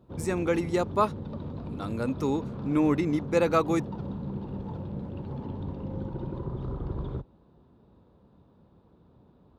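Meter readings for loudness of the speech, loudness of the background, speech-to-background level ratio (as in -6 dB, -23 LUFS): -27.5 LUFS, -37.0 LUFS, 9.5 dB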